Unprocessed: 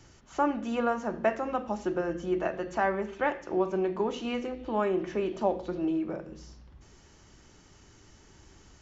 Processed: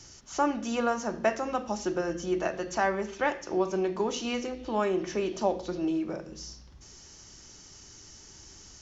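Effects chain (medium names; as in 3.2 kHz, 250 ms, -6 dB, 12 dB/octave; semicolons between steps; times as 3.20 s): peaking EQ 5.7 kHz +14.5 dB 1.1 oct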